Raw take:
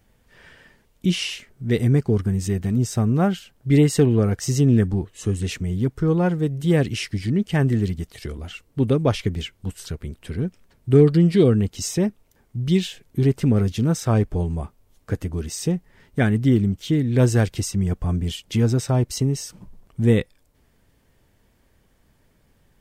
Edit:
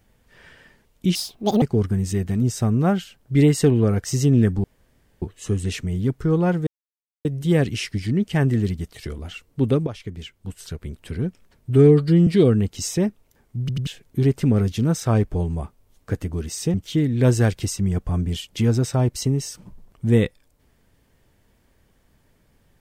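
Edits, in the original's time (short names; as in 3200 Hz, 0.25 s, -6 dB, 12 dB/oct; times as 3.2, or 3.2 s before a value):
1.15–1.97 speed 175%
4.99 insert room tone 0.58 s
6.44 insert silence 0.58 s
9.06–10.18 fade in, from -14.5 dB
10.89–11.27 stretch 1.5×
12.6 stutter in place 0.09 s, 3 plays
15.74–16.69 cut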